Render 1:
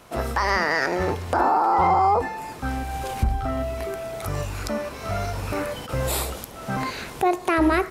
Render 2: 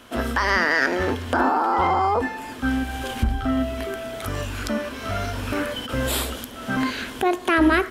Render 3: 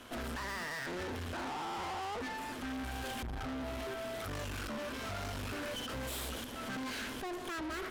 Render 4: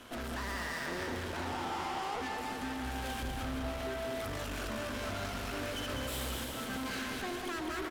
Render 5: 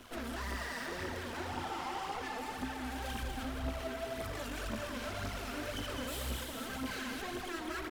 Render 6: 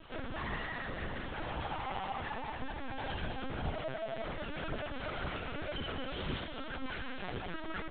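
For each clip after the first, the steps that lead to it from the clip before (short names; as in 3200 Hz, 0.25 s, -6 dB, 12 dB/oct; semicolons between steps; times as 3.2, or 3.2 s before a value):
thirty-one-band EQ 160 Hz -11 dB, 250 Hz +12 dB, 800 Hz -4 dB, 1600 Hz +7 dB, 3150 Hz +10 dB
limiter -18 dBFS, peak gain reduction 10 dB; tube stage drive 37 dB, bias 0.7; gain -1 dB
bouncing-ball echo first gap 0.2 s, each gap 0.85×, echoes 5
in parallel at -2.5 dB: limiter -38.5 dBFS, peak gain reduction 10 dB; on the sum: crossover distortion -54 dBFS; phaser 1.9 Hz, delay 4.5 ms, feedback 52%; gain -5 dB
LPC vocoder at 8 kHz pitch kept; gain +1 dB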